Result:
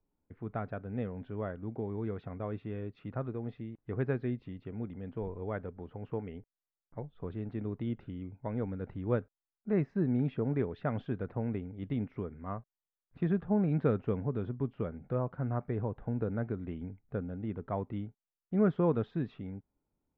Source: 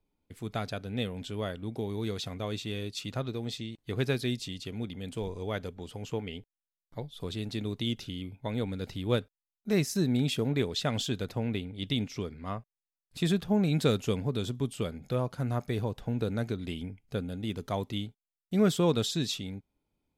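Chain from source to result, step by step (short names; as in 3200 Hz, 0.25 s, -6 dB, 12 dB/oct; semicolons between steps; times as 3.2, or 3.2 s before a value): LPF 1700 Hz 24 dB/oct; gain -2.5 dB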